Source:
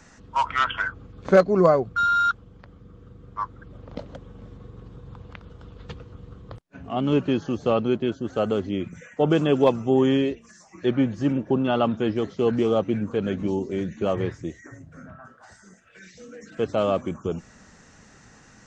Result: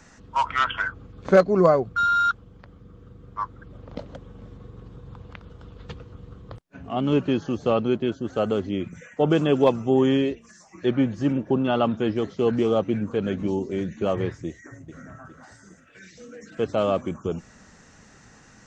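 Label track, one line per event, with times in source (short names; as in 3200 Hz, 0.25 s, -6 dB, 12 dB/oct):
14.470000	15.030000	echo throw 0.41 s, feedback 45%, level -7 dB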